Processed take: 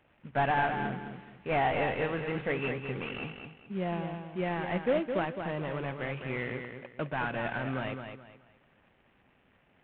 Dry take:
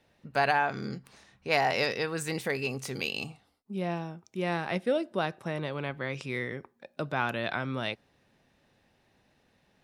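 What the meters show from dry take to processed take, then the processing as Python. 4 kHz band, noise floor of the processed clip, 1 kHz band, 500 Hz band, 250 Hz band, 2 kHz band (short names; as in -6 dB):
-8.0 dB, -67 dBFS, -0.5 dB, -0.5 dB, 0.0 dB, -2.5 dB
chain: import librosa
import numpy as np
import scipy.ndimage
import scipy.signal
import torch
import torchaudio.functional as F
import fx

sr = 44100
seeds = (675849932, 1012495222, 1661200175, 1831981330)

p1 = fx.cvsd(x, sr, bps=16000)
y = p1 + fx.echo_feedback(p1, sr, ms=213, feedback_pct=29, wet_db=-7, dry=0)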